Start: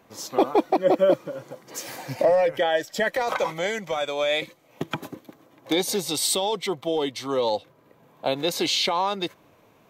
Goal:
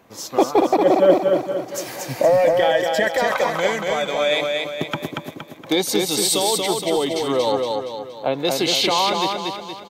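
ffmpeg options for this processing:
ffmpeg -i in.wav -filter_complex "[0:a]asettb=1/sr,asplit=3[link_01][link_02][link_03];[link_01]atrim=end=7.524[link_04];[link_02]atrim=start=7.52:end=8.45,asetpts=PTS-STARTPTS,afade=type=in:duration=0.004:curve=qsin,afade=type=out:start_time=0.926:duration=0.004:curve=qsin,acrossover=split=2800[link_05][link_06];[link_06]acompressor=threshold=-51dB:ratio=4:attack=1:release=60[link_07];[link_05][link_07]amix=inputs=2:normalize=0[link_08];[link_03]atrim=start=8.446[link_09];[link_04][link_08]acrossfade=duration=0.004:curve1=hsin:curve2=qsin[link_10];[link_10][link_09]acrossfade=duration=0.004:curve1=qsin:curve2=hsin,aecho=1:1:234|468|702|936|1170|1404:0.668|0.314|0.148|0.0694|0.0326|0.0153,volume=3.5dB" out.wav

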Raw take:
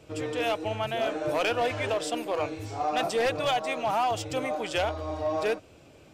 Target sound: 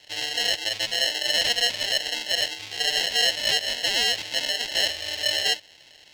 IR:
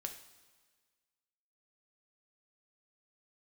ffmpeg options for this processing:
-filter_complex "[0:a]acrusher=samples=37:mix=1:aa=0.000001,acrossover=split=600 5300:gain=0.224 1 0.0708[link_01][link_02][link_03];[link_01][link_02][link_03]amix=inputs=3:normalize=0,aexciter=amount=8.4:drive=5.4:freq=2100,volume=-2dB"

